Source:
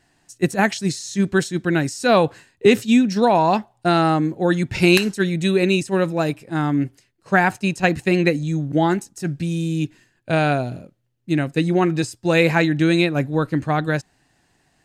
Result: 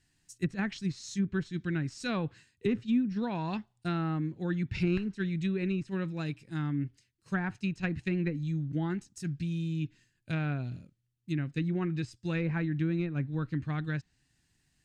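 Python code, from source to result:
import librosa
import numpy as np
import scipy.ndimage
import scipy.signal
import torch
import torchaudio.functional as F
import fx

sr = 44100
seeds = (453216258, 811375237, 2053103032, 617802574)

y = fx.tracing_dist(x, sr, depth_ms=0.048)
y = fx.tone_stack(y, sr, knobs='6-0-2')
y = fx.env_lowpass_down(y, sr, base_hz=1200.0, full_db=-32.0)
y = F.gain(torch.from_numpy(y), 7.0).numpy()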